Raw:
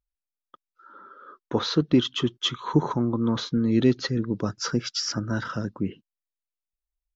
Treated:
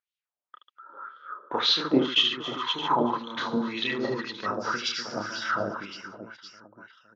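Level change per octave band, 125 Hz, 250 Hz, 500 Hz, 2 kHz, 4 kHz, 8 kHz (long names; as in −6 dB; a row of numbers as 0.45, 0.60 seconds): −14.5 dB, −6.5 dB, −2.0 dB, +5.5 dB, +4.0 dB, can't be measured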